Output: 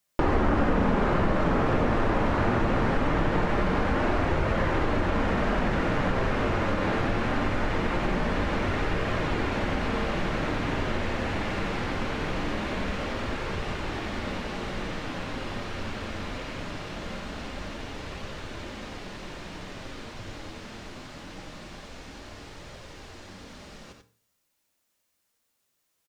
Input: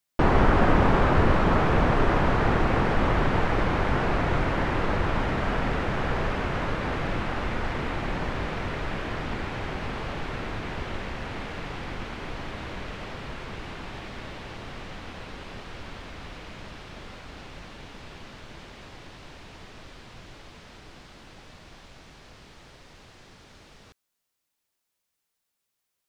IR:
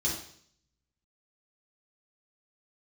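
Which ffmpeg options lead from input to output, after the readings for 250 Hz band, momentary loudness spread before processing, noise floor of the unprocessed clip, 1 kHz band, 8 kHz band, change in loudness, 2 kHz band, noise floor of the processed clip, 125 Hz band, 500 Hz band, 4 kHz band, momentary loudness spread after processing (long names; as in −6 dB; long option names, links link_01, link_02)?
+1.5 dB, 23 LU, −81 dBFS, −1.0 dB, can't be measured, −1.5 dB, 0.0 dB, −76 dBFS, −1.5 dB, +0.5 dB, +1.0 dB, 18 LU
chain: -filter_complex "[0:a]flanger=delay=1.5:depth=8.3:regen=-50:speed=0.22:shape=triangular,aecho=1:1:90:0.473,asplit=2[link_01][link_02];[1:a]atrim=start_sample=2205,asetrate=61740,aresample=44100[link_03];[link_02][link_03]afir=irnorm=-1:irlink=0,volume=-13dB[link_04];[link_01][link_04]amix=inputs=2:normalize=0,acompressor=threshold=-32dB:ratio=3,volume=9dB"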